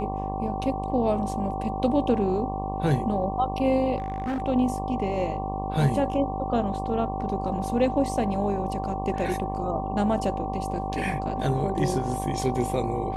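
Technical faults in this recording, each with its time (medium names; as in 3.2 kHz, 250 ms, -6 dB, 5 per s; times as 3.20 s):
buzz 50 Hz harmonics 23 -32 dBFS
whine 770 Hz -31 dBFS
3.98–4.42 s: clipped -25 dBFS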